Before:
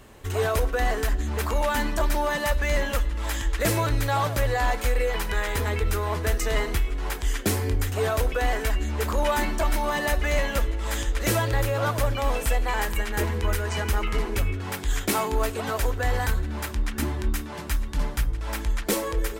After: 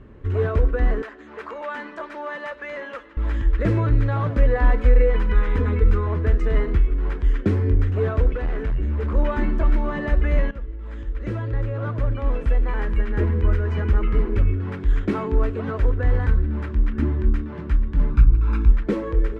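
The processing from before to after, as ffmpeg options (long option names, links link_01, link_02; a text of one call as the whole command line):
ffmpeg -i in.wav -filter_complex "[0:a]asettb=1/sr,asplit=3[link_01][link_02][link_03];[link_01]atrim=end=1.024[link_04];[link_02]atrim=start=1.02:end=3.17,asetpts=PTS-STARTPTS,afade=type=in:duration=0.004:curve=qsin,afade=type=out:start_time=2.146:duration=0.004:curve=qsin,highpass=600[link_05];[link_03]atrim=start=3.166[link_06];[link_04][link_05]acrossfade=duration=0.004:curve1=hsin:curve2=qsin[link_07];[link_07][link_06]acrossfade=duration=0.004:curve1=qsin:curve2=hsin,asettb=1/sr,asplit=3[link_08][link_09][link_10];[link_08]atrim=end=4.304[link_11];[link_09]atrim=start=4.3:end=6.07,asetpts=PTS-STARTPTS,afade=type=in:duration=0.004:curve=qsin,afade=type=out:start_time=1.766:duration=0.004:curve=qsin,aecho=1:1:4:0.65,atrim=end_sample=78057[link_12];[link_10]atrim=start=6.066[link_13];[link_11][link_12]acrossfade=duration=0.004:curve1=hsin:curve2=qsin[link_14];[link_14][link_13]acrossfade=duration=0.004:curve1=qsin:curve2=hsin,asettb=1/sr,asplit=3[link_15][link_16][link_17];[link_15]atrim=end=8.324[link_18];[link_16]atrim=start=8.32:end=9.15,asetpts=PTS-STARTPTS,afade=type=in:duration=0.004:curve=qsin,afade=type=out:start_time=0.826:duration=0.004:curve=qsin,asoftclip=type=hard:threshold=-25.5dB[link_19];[link_17]atrim=start=9.146[link_20];[link_18][link_19]acrossfade=duration=0.004:curve1=hsin:curve2=qsin[link_21];[link_21][link_20]acrossfade=duration=0.004:curve1=qsin:curve2=hsin,asettb=1/sr,asplit=3[link_22][link_23][link_24];[link_22]atrim=end=18.104[link_25];[link_23]atrim=start=18.1:end=18.72,asetpts=PTS-STARTPTS,afade=type=in:duration=0.004:curve=qsin,afade=type=out:start_time=0.616:duration=0.004:curve=qsin,aecho=1:1:0.8:0.8,atrim=end_sample=27342[link_26];[link_24]atrim=start=18.716[link_27];[link_25][link_26]acrossfade=duration=0.004:curve1=hsin:curve2=qsin[link_28];[link_28][link_27]acrossfade=duration=0.004:curve1=qsin:curve2=hsin,asplit=2[link_29][link_30];[link_29]atrim=end=10.51,asetpts=PTS-STARTPTS,afade=type=out:start_time=10.506:duration=0.004:curve=hsin:silence=0.177828[link_31];[link_30]atrim=start=10.51,asetpts=PTS-STARTPTS,afade=type=in:duration=2.57:silence=0.177828[link_32];[link_31][link_32]concat=n=2:v=0:a=1,lowpass=1100,equalizer=frequency=770:width=1.4:gain=-14.5,volume=7dB" out.wav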